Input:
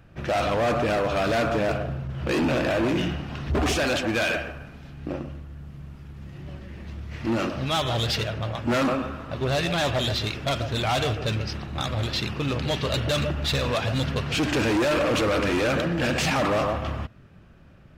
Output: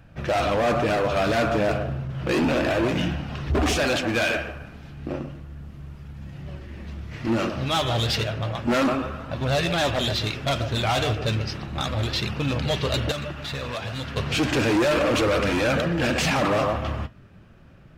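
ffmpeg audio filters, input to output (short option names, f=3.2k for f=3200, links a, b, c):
-filter_complex "[0:a]asettb=1/sr,asplit=3[a][b][c];[a]atrim=end=13.114[d];[b]atrim=start=13.11:end=14.17,asetpts=PTS-STARTPTS,afade=t=in:d=0.004:c=qsin,afade=t=out:st=1.056:d=0.004:c=qsin,acrossover=split=1000|2000[e][f][g];[e]acompressor=threshold=-33dB:ratio=4[h];[f]acompressor=threshold=-39dB:ratio=4[i];[g]acompressor=threshold=-38dB:ratio=4[j];[h][i][j]amix=inputs=3:normalize=0[k];[c]atrim=start=14.166[l];[d][k]acrossfade=d=0.004:c1=hsin:c2=qsin[m];[m][l]acrossfade=d=0.004:c1=qsin:c2=hsin,flanger=delay=1.2:depth=8.8:regen=-62:speed=0.32:shape=sinusoidal,volume=5.5dB"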